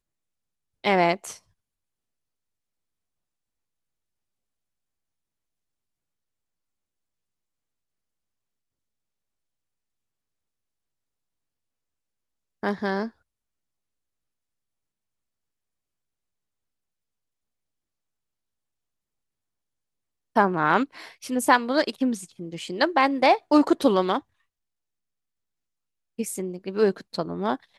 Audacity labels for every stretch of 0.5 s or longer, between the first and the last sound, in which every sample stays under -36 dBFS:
1.360000	12.630000	silence
13.080000	20.360000	silence
24.190000	26.190000	silence